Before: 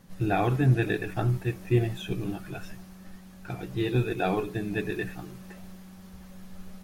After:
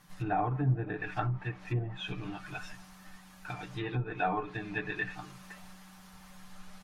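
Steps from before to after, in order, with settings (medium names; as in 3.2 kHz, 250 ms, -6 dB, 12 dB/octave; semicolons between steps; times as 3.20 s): low-pass that closes with the level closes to 620 Hz, closed at -20 dBFS; resonant low shelf 670 Hz -9 dB, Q 1.5; comb 6.7 ms, depth 53%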